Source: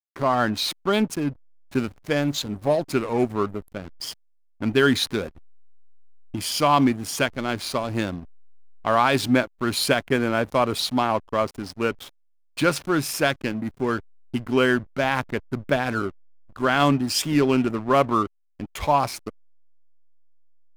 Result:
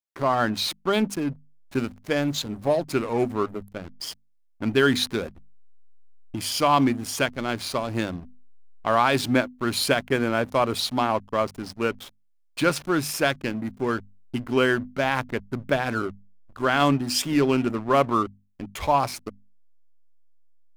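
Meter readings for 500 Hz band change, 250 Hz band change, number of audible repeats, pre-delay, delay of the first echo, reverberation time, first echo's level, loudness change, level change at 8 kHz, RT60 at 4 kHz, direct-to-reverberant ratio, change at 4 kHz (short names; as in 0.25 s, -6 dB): -1.0 dB, -1.5 dB, none, none, none, none, none, -1.0 dB, -1.0 dB, none, none, -1.0 dB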